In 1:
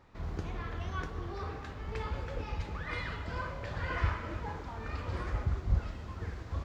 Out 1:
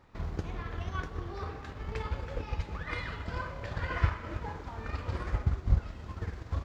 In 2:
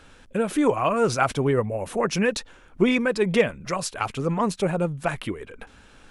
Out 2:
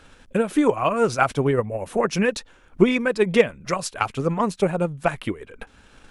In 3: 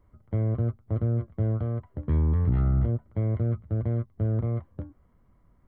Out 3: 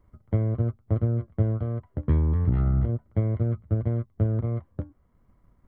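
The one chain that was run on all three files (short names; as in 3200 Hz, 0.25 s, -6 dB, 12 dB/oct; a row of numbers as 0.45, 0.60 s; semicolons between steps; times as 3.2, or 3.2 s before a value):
transient shaper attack +5 dB, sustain -3 dB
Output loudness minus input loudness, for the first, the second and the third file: +1.5, +2.0, +1.0 LU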